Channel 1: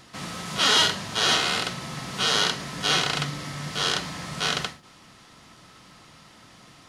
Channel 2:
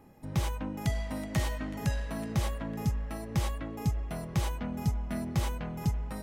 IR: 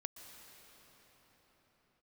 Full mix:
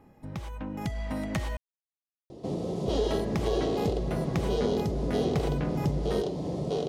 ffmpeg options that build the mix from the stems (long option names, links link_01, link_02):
-filter_complex "[0:a]firequalizer=gain_entry='entry(230,0);entry(390,11);entry(1400,-29);entry(3500,-18);entry(12000,-22)':delay=0.05:min_phase=1,acompressor=threshold=-35dB:ratio=3,adelay=2300,volume=-0.5dB[link_01];[1:a]highshelf=frequency=5700:gain=-9.5,acompressor=threshold=-34dB:ratio=12,volume=0dB,asplit=3[link_02][link_03][link_04];[link_02]atrim=end=1.57,asetpts=PTS-STARTPTS,afade=type=out:start_time=1.566:duration=0.004:curve=hsin[link_05];[link_03]atrim=start=1.57:end=2.88,asetpts=PTS-STARTPTS,volume=0[link_06];[link_04]atrim=start=2.88,asetpts=PTS-STARTPTS,afade=type=in:duration=0.004:curve=hsin[link_07];[link_05][link_06][link_07]concat=n=3:v=0:a=1[link_08];[link_01][link_08]amix=inputs=2:normalize=0,dynaudnorm=framelen=510:gausssize=3:maxgain=7dB"